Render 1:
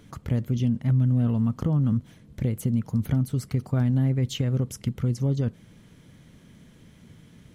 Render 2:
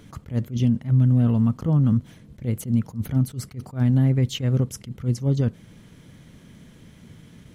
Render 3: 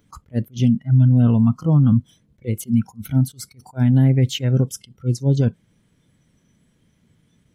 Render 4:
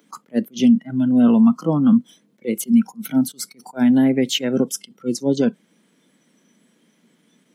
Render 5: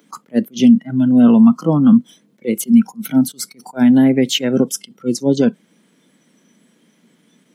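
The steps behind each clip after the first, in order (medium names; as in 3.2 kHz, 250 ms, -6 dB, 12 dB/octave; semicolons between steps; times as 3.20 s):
attacks held to a fixed rise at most 230 dB/s; trim +4 dB
spectral noise reduction 18 dB; trim +4.5 dB
steep high-pass 200 Hz 36 dB/octave; trim +5.5 dB
bass shelf 69 Hz +9 dB; trim +3.5 dB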